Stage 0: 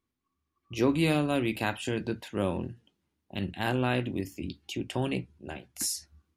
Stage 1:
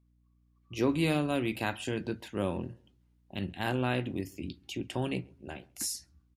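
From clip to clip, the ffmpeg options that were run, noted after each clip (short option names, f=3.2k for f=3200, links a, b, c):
-filter_complex "[0:a]dynaudnorm=f=160:g=7:m=3dB,aeval=exprs='val(0)+0.000891*(sin(2*PI*60*n/s)+sin(2*PI*2*60*n/s)/2+sin(2*PI*3*60*n/s)/3+sin(2*PI*4*60*n/s)/4+sin(2*PI*5*60*n/s)/5)':c=same,asplit=2[a][b];[b]adelay=135,lowpass=f=1.1k:p=1,volume=-24dB,asplit=2[c][d];[d]adelay=135,lowpass=f=1.1k:p=1,volume=0.34[e];[a][c][e]amix=inputs=3:normalize=0,volume=-5.5dB"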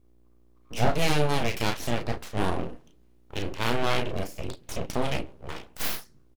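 -filter_complex "[0:a]asplit=2[a][b];[b]adelay=34,volume=-6dB[c];[a][c]amix=inputs=2:normalize=0,bandreject=f=196.7:t=h:w=4,bandreject=f=393.4:t=h:w=4,bandreject=f=590.1:t=h:w=4,bandreject=f=786.8:t=h:w=4,bandreject=f=983.5:t=h:w=4,bandreject=f=1.1802k:t=h:w=4,bandreject=f=1.3769k:t=h:w=4,bandreject=f=1.5736k:t=h:w=4,aeval=exprs='abs(val(0))':c=same,volume=7dB"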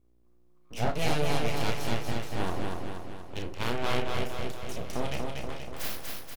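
-af "aecho=1:1:239|478|717|956|1195|1434|1673|1912:0.668|0.381|0.217|0.124|0.0706|0.0402|0.0229|0.0131,volume=-5.5dB"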